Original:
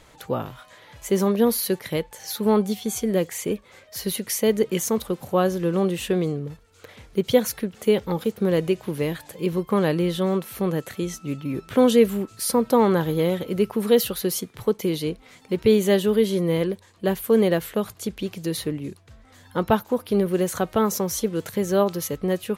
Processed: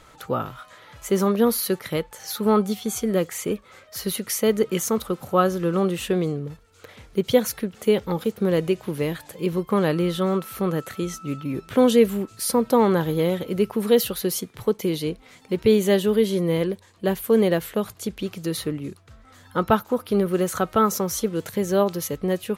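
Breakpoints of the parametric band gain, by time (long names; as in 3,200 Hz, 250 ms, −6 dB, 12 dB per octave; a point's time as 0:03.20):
parametric band 1,300 Hz 0.22 octaves
+10.5 dB
from 0:06.05 +3 dB
from 0:09.89 +9.5 dB
from 0:11.43 +0.5 dB
from 0:18.20 +8.5 dB
from 0:21.32 −0.5 dB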